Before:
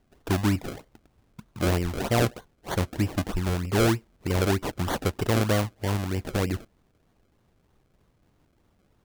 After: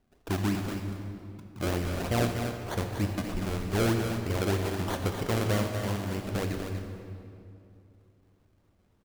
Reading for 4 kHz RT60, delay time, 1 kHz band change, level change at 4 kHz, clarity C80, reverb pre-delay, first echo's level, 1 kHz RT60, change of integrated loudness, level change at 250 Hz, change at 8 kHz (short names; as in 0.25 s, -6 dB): 1.8 s, 0.241 s, -3.5 dB, -3.5 dB, 3.5 dB, 20 ms, -7.5 dB, 2.4 s, -4.0 dB, -3.0 dB, -4.0 dB